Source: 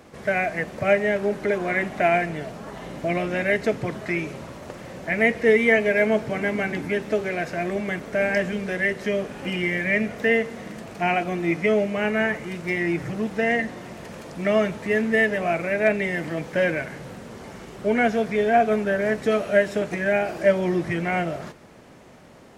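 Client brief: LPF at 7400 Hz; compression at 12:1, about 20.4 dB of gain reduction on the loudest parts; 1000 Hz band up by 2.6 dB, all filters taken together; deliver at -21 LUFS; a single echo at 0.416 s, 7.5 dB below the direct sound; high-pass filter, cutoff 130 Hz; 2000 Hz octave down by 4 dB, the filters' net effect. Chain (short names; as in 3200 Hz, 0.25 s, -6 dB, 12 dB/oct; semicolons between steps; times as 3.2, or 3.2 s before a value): HPF 130 Hz; LPF 7400 Hz; bell 1000 Hz +6 dB; bell 2000 Hz -6.5 dB; compressor 12:1, threshold -33 dBFS; echo 0.416 s -7.5 dB; gain +15.5 dB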